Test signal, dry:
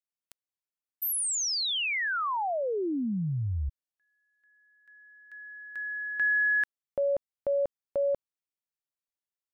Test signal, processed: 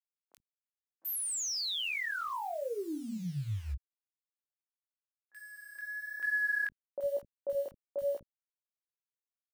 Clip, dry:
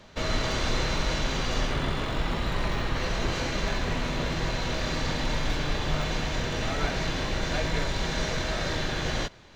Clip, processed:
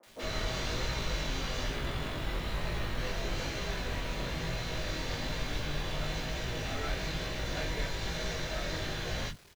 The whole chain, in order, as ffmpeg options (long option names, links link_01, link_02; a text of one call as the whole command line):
ffmpeg -i in.wav -filter_complex "[0:a]acrusher=bits=7:mix=0:aa=0.000001,flanger=delay=17:depth=5.6:speed=1.1,acrossover=split=250|1000[link_01][link_02][link_03];[link_03]adelay=30[link_04];[link_01]adelay=60[link_05];[link_05][link_02][link_04]amix=inputs=3:normalize=0,volume=-2.5dB" out.wav